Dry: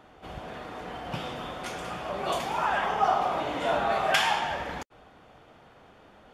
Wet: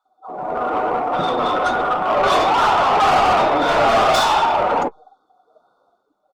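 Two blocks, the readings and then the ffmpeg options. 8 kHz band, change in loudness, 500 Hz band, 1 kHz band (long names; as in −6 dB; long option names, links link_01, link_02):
+8.5 dB, +12.0 dB, +13.0 dB, +13.0 dB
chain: -filter_complex "[0:a]highpass=200,afftfilt=real='re*(1-between(b*sr/4096,1500,3400))':imag='im*(1-between(b*sr/4096,1500,3400))':win_size=4096:overlap=0.75,afftdn=noise_reduction=31:noise_floor=-39,dynaudnorm=framelen=150:gausssize=7:maxgain=8.5dB,acrossover=split=750[link_01][link_02];[link_01]adelay=50[link_03];[link_03][link_02]amix=inputs=2:normalize=0,tremolo=f=1.2:d=0.36,flanger=delay=2.4:depth=9.3:regen=-69:speed=0.38:shape=sinusoidal,asplit=2[link_04][link_05];[link_05]highpass=frequency=720:poles=1,volume=30dB,asoftclip=type=tanh:threshold=-9dB[link_06];[link_04][link_06]amix=inputs=2:normalize=0,lowpass=frequency=3100:poles=1,volume=-6dB,flanger=delay=6.5:depth=6.1:regen=-50:speed=0.79:shape=sinusoidal,asplit=2[link_07][link_08];[link_08]aeval=exprs='clip(val(0),-1,0.0211)':channel_layout=same,volume=-8.5dB[link_09];[link_07][link_09]amix=inputs=2:normalize=0,volume=3.5dB" -ar 48000 -c:a libopus -b:a 32k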